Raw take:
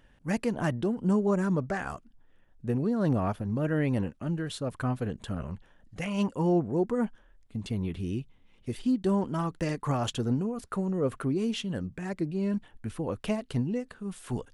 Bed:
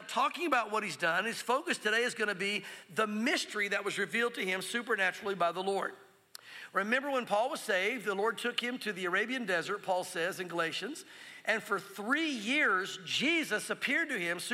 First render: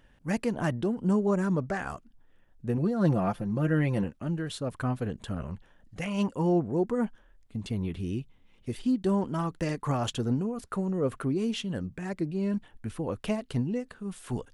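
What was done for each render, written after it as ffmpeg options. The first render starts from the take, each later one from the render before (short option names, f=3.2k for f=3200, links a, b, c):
-filter_complex "[0:a]asettb=1/sr,asplit=3[a][b][c];[a]atrim=end=2.774[d];[b]atrim=start=2.77:end=4.04,asetpts=PTS-STARTPTS,afade=t=in:d=0.004:c=qsin,afade=t=out:st=1.266:d=0.004:c=qsin,aecho=1:1:5.8:0.63,atrim=end_sample=56007[e];[c]atrim=start=4.036[f];[d][e]acrossfade=d=0.004:c1=hsin:c2=qsin[g];[g][f]acrossfade=d=0.004:c1=qsin:c2=hsin"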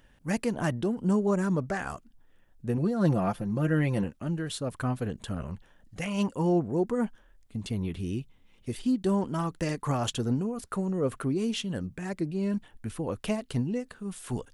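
-af "highshelf=f=5.1k:g=6"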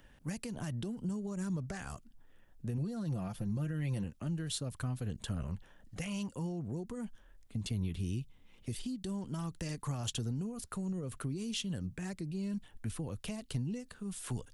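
-filter_complex "[0:a]alimiter=limit=-23.5dB:level=0:latency=1:release=97,acrossover=split=170|3000[a][b][c];[b]acompressor=threshold=-45dB:ratio=4[d];[a][d][c]amix=inputs=3:normalize=0"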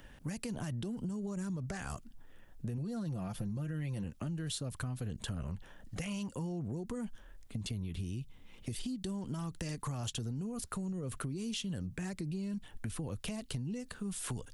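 -filter_complex "[0:a]asplit=2[a][b];[b]alimiter=level_in=11.5dB:limit=-24dB:level=0:latency=1,volume=-11.5dB,volume=-0.5dB[c];[a][c]amix=inputs=2:normalize=0,acompressor=threshold=-35dB:ratio=6"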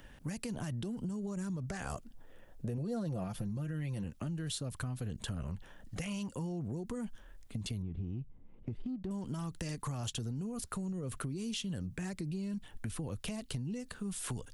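-filter_complex "[0:a]asettb=1/sr,asplit=3[a][b][c];[a]atrim=end=1.804[d];[b]atrim=start=1.8:end=3.24,asetpts=PTS-STARTPTS,afade=t=in:d=0.004:c=qsin,afade=t=out:st=1.436:d=0.004:c=qsin,equalizer=f=540:t=o:w=1:g=8[e];[c]atrim=start=3.236[f];[d][e]acrossfade=d=0.004:c1=hsin:c2=qsin[g];[g][f]acrossfade=d=0.004:c1=qsin:c2=hsin,asettb=1/sr,asplit=3[h][i][j];[h]atrim=end=7.824[k];[i]atrim=start=7.82:end=9.11,asetpts=PTS-STARTPTS,afade=t=in:d=0.004:c=qsin,afade=t=out:st=1.286:d=0.004:c=qsin,adynamicsmooth=sensitivity=4.5:basefreq=710[l];[j]atrim=start=9.106[m];[k][l]acrossfade=d=0.004:c1=hsin:c2=qsin[n];[n][m]acrossfade=d=0.004:c1=qsin:c2=hsin"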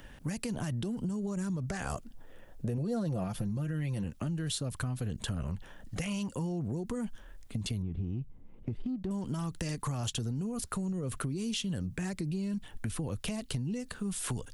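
-af "volume=4dB"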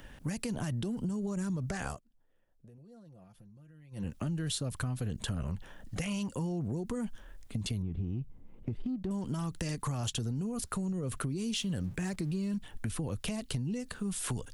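-filter_complex "[0:a]asettb=1/sr,asplit=3[a][b][c];[a]atrim=end=11.554[d];[b]atrim=start=11.55:end=12.57,asetpts=PTS-STARTPTS,afade=t=in:d=0.004:c=qsin,afade=t=out:st=1.016:d=0.004:c=qsin,aeval=exprs='val(0)+0.5*0.00237*sgn(val(0))':c=same[e];[c]atrim=start=12.566[f];[d][e]acrossfade=d=0.004:c1=hsin:c2=qsin[g];[g][f]acrossfade=d=0.004:c1=qsin:c2=hsin,asplit=3[h][i][j];[h]atrim=end=2,asetpts=PTS-STARTPTS,afade=t=out:st=1.86:d=0.14:silence=0.0794328[k];[i]atrim=start=2:end=3.91,asetpts=PTS-STARTPTS,volume=-22dB[l];[j]atrim=start=3.91,asetpts=PTS-STARTPTS,afade=t=in:d=0.14:silence=0.0794328[m];[k][l][m]concat=n=3:v=0:a=1"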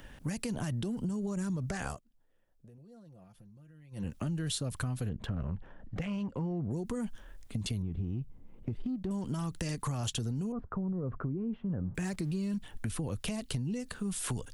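-filter_complex "[0:a]asettb=1/sr,asplit=3[a][b][c];[a]atrim=end=5.094[d];[b]atrim=start=5.09:end=6.71,asetpts=PTS-STARTPTS,afade=t=in:d=0.004:c=qsin,afade=t=out:st=1.616:d=0.004:c=qsin,adynamicsmooth=sensitivity=3.5:basefreq=1.6k[e];[c]atrim=start=6.706[f];[d][e]acrossfade=d=0.004:c1=hsin:c2=qsin[g];[g][f]acrossfade=d=0.004:c1=qsin:c2=hsin,asettb=1/sr,asplit=3[h][i][j];[h]atrim=end=10.524[k];[i]atrim=start=10.52:end=11.95,asetpts=PTS-STARTPTS,afade=t=in:d=0.004:c=qsin,afade=t=out:st=1.426:d=0.004:c=qsin,lowpass=f=1.3k:w=0.5412,lowpass=f=1.3k:w=1.3066[l];[j]atrim=start=11.946[m];[k][l]acrossfade=d=0.004:c1=hsin:c2=qsin[n];[n][m]acrossfade=d=0.004:c1=qsin:c2=hsin"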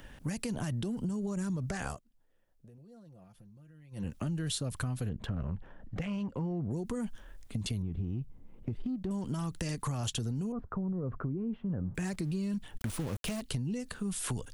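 -filter_complex "[0:a]asettb=1/sr,asplit=3[a][b][c];[a]atrim=end=12.784[d];[b]atrim=start=12.78:end=13.41,asetpts=PTS-STARTPTS,afade=t=in:d=0.004:c=qsin,afade=t=out:st=0.626:d=0.004:c=qsin,aeval=exprs='val(0)*gte(abs(val(0)),0.0112)':c=same[e];[c]atrim=start=13.406[f];[d][e]acrossfade=d=0.004:c1=hsin:c2=qsin[g];[g][f]acrossfade=d=0.004:c1=qsin:c2=hsin"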